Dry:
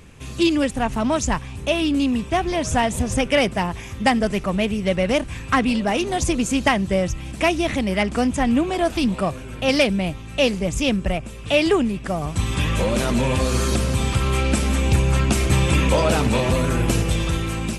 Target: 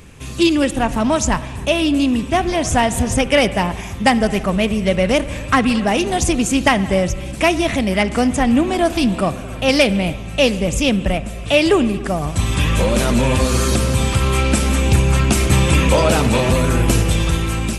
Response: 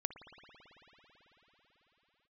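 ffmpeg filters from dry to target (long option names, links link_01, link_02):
-filter_complex "[0:a]asplit=2[link_01][link_02];[1:a]atrim=start_sample=2205,afade=type=out:start_time=0.38:duration=0.01,atrim=end_sample=17199,highshelf=frequency=8100:gain=8[link_03];[link_02][link_03]afir=irnorm=-1:irlink=0,volume=1dB[link_04];[link_01][link_04]amix=inputs=2:normalize=0,volume=-2dB"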